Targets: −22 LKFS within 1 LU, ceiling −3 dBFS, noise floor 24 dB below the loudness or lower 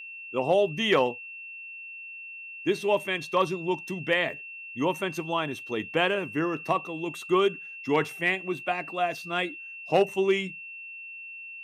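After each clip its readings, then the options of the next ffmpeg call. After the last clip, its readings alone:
interfering tone 2,700 Hz; level of the tone −39 dBFS; integrated loudness −27.5 LKFS; sample peak −11.5 dBFS; target loudness −22.0 LKFS
→ -af "bandreject=frequency=2700:width=30"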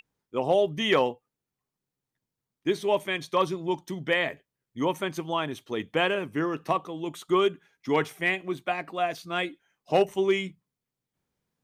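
interfering tone none found; integrated loudness −27.5 LKFS; sample peak −11.5 dBFS; target loudness −22.0 LKFS
→ -af "volume=5.5dB"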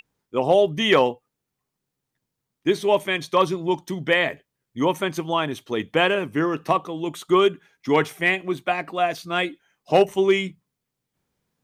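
integrated loudness −22.0 LKFS; sample peak −6.0 dBFS; background noise floor −82 dBFS

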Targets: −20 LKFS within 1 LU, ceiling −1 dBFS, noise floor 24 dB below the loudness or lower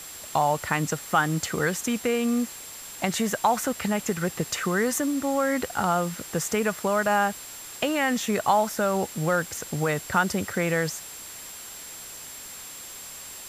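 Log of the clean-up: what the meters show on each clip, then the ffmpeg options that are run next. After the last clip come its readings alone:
interfering tone 7,500 Hz; level of the tone −42 dBFS; background noise floor −41 dBFS; target noise floor −50 dBFS; integrated loudness −25.5 LKFS; sample peak −8.0 dBFS; target loudness −20.0 LKFS
→ -af "bandreject=frequency=7500:width=30"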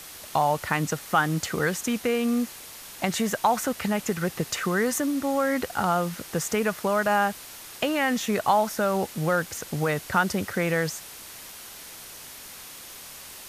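interfering tone none found; background noise floor −43 dBFS; target noise floor −50 dBFS
→ -af "afftdn=noise_reduction=7:noise_floor=-43"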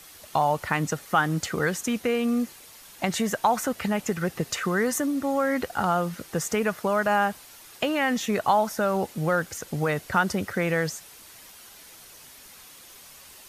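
background noise floor −48 dBFS; target noise floor −50 dBFS
→ -af "afftdn=noise_reduction=6:noise_floor=-48"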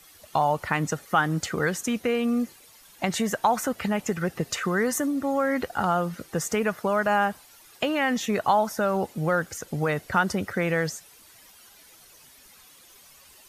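background noise floor −53 dBFS; integrated loudness −26.0 LKFS; sample peak −8.0 dBFS; target loudness −20.0 LKFS
→ -af "volume=6dB"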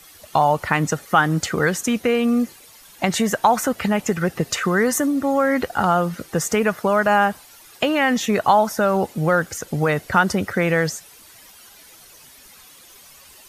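integrated loudness −20.0 LKFS; sample peak −2.0 dBFS; background noise floor −47 dBFS

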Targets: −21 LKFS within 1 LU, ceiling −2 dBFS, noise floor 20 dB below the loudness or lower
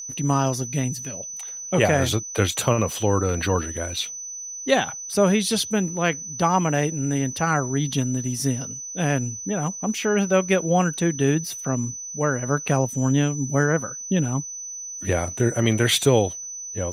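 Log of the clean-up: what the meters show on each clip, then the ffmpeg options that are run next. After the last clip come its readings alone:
interfering tone 6,000 Hz; level of the tone −32 dBFS; integrated loudness −23.0 LKFS; sample peak −4.5 dBFS; target loudness −21.0 LKFS
→ -af "bandreject=frequency=6000:width=30"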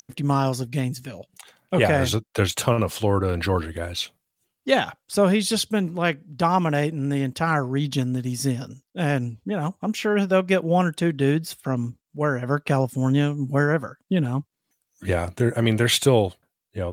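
interfering tone none found; integrated loudness −23.5 LKFS; sample peak −5.0 dBFS; target loudness −21.0 LKFS
→ -af "volume=2.5dB"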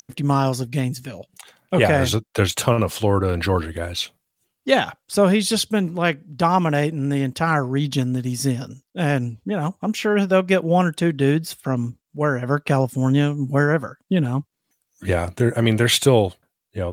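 integrated loudness −21.0 LKFS; sample peak −2.5 dBFS; background noise floor −79 dBFS

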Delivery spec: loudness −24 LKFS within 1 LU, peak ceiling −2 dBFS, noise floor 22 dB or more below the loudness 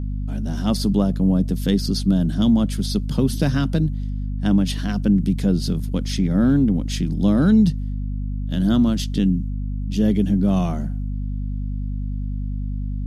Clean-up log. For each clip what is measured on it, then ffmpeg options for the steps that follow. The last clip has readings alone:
mains hum 50 Hz; hum harmonics up to 250 Hz; level of the hum −23 dBFS; integrated loudness −21.0 LKFS; sample peak −6.5 dBFS; target loudness −24.0 LKFS
→ -af "bandreject=frequency=50:width_type=h:width=6,bandreject=frequency=100:width_type=h:width=6,bandreject=frequency=150:width_type=h:width=6,bandreject=frequency=200:width_type=h:width=6,bandreject=frequency=250:width_type=h:width=6"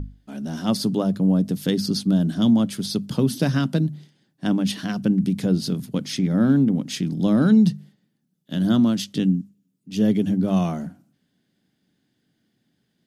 mains hum none found; integrated loudness −21.5 LKFS; sample peak −7.5 dBFS; target loudness −24.0 LKFS
→ -af "volume=-2.5dB"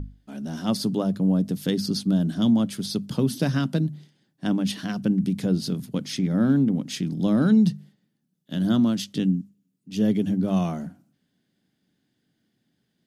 integrated loudness −24.0 LKFS; sample peak −10.0 dBFS; background noise floor −74 dBFS

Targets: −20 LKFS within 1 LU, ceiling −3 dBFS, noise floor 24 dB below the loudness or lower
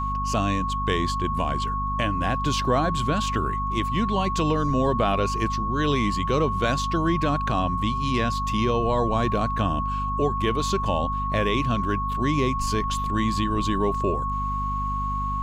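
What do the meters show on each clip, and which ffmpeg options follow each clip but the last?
mains hum 50 Hz; hum harmonics up to 250 Hz; level of the hum −27 dBFS; interfering tone 1,100 Hz; level of the tone −26 dBFS; integrated loudness −24.5 LKFS; sample peak −10.5 dBFS; target loudness −20.0 LKFS
→ -af "bandreject=frequency=50:width_type=h:width=4,bandreject=frequency=100:width_type=h:width=4,bandreject=frequency=150:width_type=h:width=4,bandreject=frequency=200:width_type=h:width=4,bandreject=frequency=250:width_type=h:width=4"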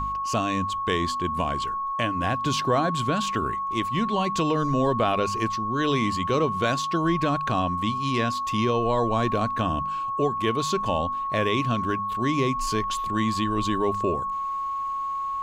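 mains hum none found; interfering tone 1,100 Hz; level of the tone −26 dBFS
→ -af "bandreject=frequency=1100:width=30"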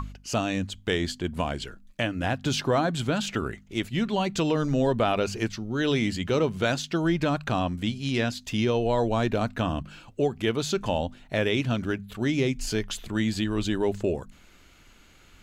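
interfering tone none found; integrated loudness −27.0 LKFS; sample peak −12.5 dBFS; target loudness −20.0 LKFS
→ -af "volume=7dB"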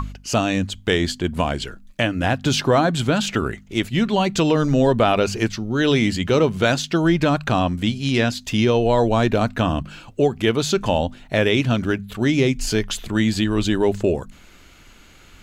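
integrated loudness −20.0 LKFS; sample peak −5.5 dBFS; background noise floor −48 dBFS

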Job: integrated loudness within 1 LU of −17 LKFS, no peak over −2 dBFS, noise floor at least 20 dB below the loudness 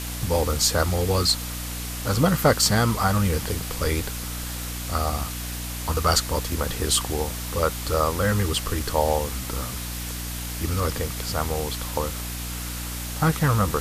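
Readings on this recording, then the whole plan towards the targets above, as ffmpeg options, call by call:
mains hum 60 Hz; hum harmonics up to 300 Hz; level of the hum −31 dBFS; background noise floor −32 dBFS; target noise floor −45 dBFS; integrated loudness −24.5 LKFS; sample peak −5.0 dBFS; target loudness −17.0 LKFS
→ -af "bandreject=frequency=60:width_type=h:width=4,bandreject=frequency=120:width_type=h:width=4,bandreject=frequency=180:width_type=h:width=4,bandreject=frequency=240:width_type=h:width=4,bandreject=frequency=300:width_type=h:width=4"
-af "afftdn=noise_reduction=13:noise_floor=-32"
-af "volume=7.5dB,alimiter=limit=-2dB:level=0:latency=1"

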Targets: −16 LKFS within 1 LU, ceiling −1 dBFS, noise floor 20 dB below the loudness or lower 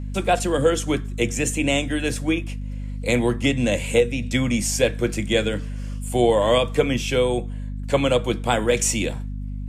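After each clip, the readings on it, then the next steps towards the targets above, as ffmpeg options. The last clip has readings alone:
mains hum 50 Hz; hum harmonics up to 250 Hz; level of the hum −27 dBFS; integrated loudness −22.0 LKFS; sample peak −6.5 dBFS; target loudness −16.0 LKFS
→ -af "bandreject=frequency=50:width_type=h:width=4,bandreject=frequency=100:width_type=h:width=4,bandreject=frequency=150:width_type=h:width=4,bandreject=frequency=200:width_type=h:width=4,bandreject=frequency=250:width_type=h:width=4"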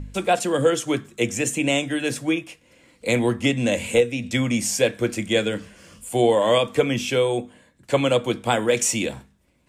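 mains hum none found; integrated loudness −22.0 LKFS; sample peak −7.5 dBFS; target loudness −16.0 LKFS
→ -af "volume=6dB"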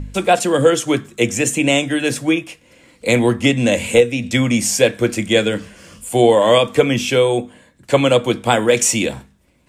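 integrated loudness −16.0 LKFS; sample peak −1.5 dBFS; background noise floor −55 dBFS

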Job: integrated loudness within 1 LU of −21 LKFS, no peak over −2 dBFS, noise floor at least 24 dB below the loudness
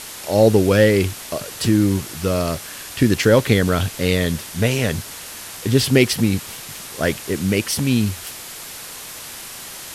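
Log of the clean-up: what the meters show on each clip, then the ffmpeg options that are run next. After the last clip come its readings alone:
background noise floor −35 dBFS; target noise floor −43 dBFS; integrated loudness −19.0 LKFS; sample peak −2.0 dBFS; target loudness −21.0 LKFS
→ -af "afftdn=noise_reduction=8:noise_floor=-35"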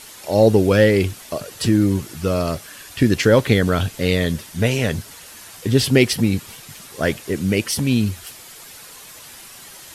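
background noise floor −41 dBFS; target noise floor −43 dBFS
→ -af "afftdn=noise_reduction=6:noise_floor=-41"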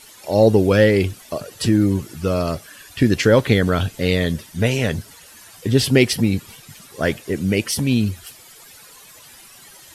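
background noise floor −45 dBFS; integrated loudness −19.0 LKFS; sample peak −2.0 dBFS; target loudness −21.0 LKFS
→ -af "volume=-2dB"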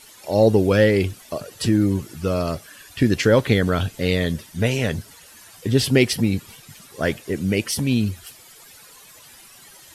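integrated loudness −21.0 LKFS; sample peak −4.0 dBFS; background noise floor −47 dBFS

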